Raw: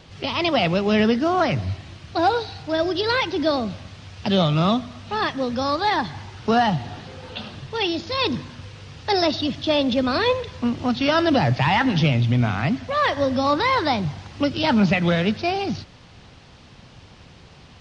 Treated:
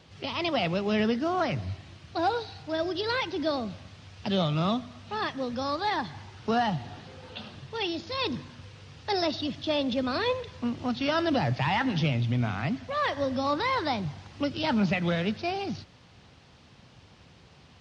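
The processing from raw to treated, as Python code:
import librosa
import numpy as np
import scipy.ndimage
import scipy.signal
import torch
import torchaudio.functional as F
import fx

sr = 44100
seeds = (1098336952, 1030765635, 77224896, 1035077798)

y = scipy.signal.sosfilt(scipy.signal.butter(2, 58.0, 'highpass', fs=sr, output='sos'), x)
y = y * 10.0 ** (-7.5 / 20.0)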